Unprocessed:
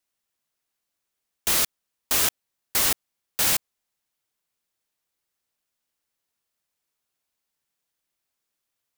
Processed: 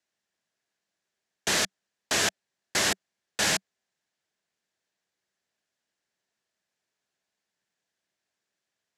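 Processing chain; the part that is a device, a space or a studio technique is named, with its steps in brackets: car door speaker (speaker cabinet 83–9300 Hz, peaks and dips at 190 Hz +6 dB, 390 Hz +4 dB, 650 Hz +5 dB, 1200 Hz -3 dB, 1700 Hz +7 dB, 9200 Hz -9 dB)

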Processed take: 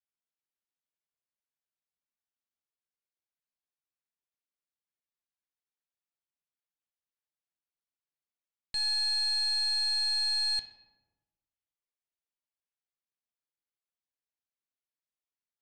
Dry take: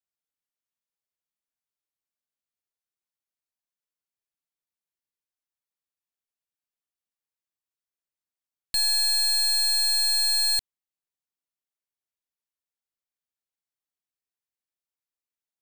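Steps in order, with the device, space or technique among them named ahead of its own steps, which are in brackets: LPF 5400 Hz 12 dB/oct; filtered reverb send (on a send: HPF 170 Hz 6 dB/oct + LPF 4700 Hz 12 dB/oct + reverb RT60 1.1 s, pre-delay 9 ms, DRR 6 dB); on the sum: gain -6 dB

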